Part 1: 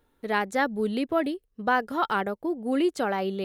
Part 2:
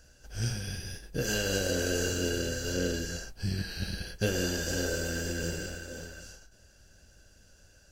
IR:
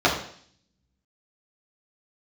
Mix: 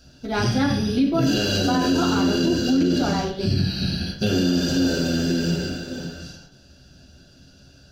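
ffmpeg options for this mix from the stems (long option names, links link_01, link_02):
-filter_complex "[0:a]highshelf=frequency=8900:gain=9,volume=-14dB,asplit=2[link_01][link_02];[link_02]volume=-5.5dB[link_03];[1:a]volume=-0.5dB,asplit=2[link_04][link_05];[link_05]volume=-14dB[link_06];[2:a]atrim=start_sample=2205[link_07];[link_03][link_06]amix=inputs=2:normalize=0[link_08];[link_08][link_07]afir=irnorm=-1:irlink=0[link_09];[link_01][link_04][link_09]amix=inputs=3:normalize=0,equalizer=frequency=125:width_type=o:width=1:gain=8,equalizer=frequency=250:width_type=o:width=1:gain=9,equalizer=frequency=500:width_type=o:width=1:gain=-4,equalizer=frequency=4000:width_type=o:width=1:gain=10,equalizer=frequency=8000:width_type=o:width=1:gain=-4,alimiter=limit=-12dB:level=0:latency=1:release=32"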